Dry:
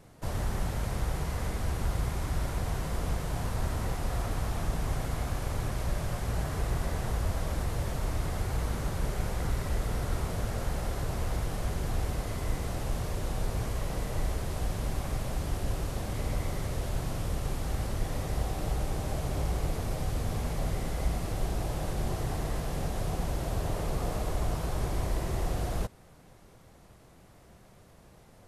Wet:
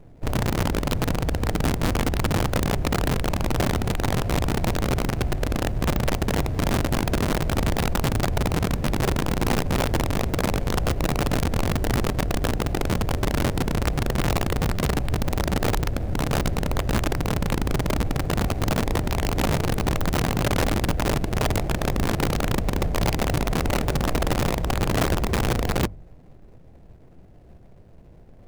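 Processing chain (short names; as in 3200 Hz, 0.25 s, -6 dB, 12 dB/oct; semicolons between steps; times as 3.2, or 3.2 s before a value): median filter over 41 samples; low shelf 84 Hz +5.5 dB; notches 50/100/150/200 Hz; on a send at -16 dB: elliptic low-pass 2200 Hz + reverb RT60 0.35 s, pre-delay 3 ms; on the sum: wrapped overs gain 23 dB; gain +6 dB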